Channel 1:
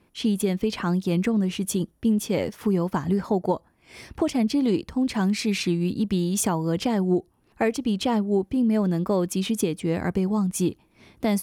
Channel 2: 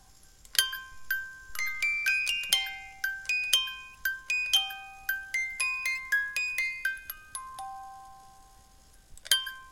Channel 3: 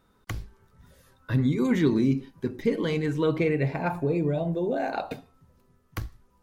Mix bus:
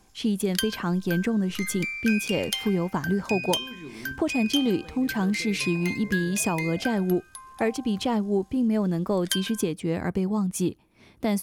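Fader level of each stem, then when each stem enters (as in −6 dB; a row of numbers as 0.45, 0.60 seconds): −2.0, −3.5, −19.0 decibels; 0.00, 0.00, 2.00 seconds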